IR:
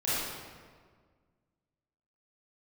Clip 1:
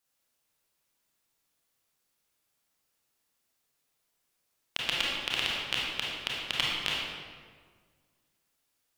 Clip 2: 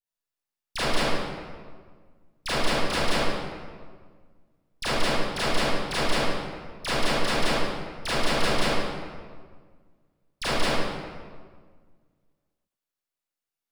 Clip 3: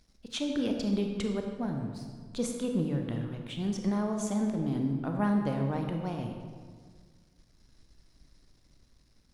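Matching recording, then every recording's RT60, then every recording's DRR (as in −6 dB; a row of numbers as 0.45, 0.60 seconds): 2; 1.7, 1.7, 1.7 seconds; −5.0, −11.5, 3.0 decibels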